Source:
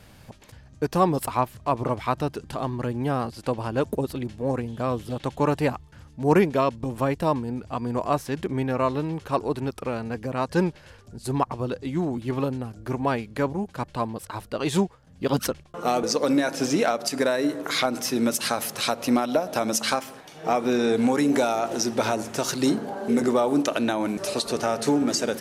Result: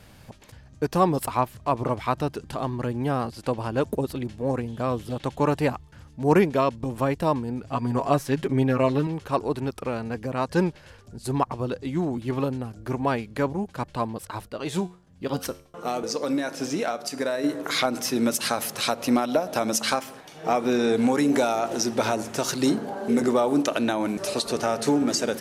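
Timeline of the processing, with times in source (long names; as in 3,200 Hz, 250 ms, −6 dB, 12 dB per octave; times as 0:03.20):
0:07.64–0:09.07: comb filter 7.3 ms, depth 78%
0:14.48–0:17.44: tuned comb filter 90 Hz, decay 0.45 s, mix 50%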